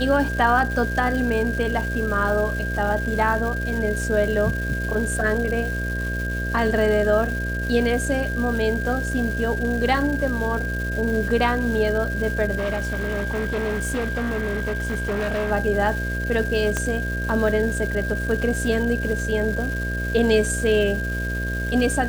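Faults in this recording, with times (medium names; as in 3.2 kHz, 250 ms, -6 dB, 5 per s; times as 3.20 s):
buzz 60 Hz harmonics 11 -27 dBFS
crackle 590 per s -30 dBFS
whine 1.6 kHz -28 dBFS
12.57–15.52 s: clipped -21 dBFS
16.77 s: pop -9 dBFS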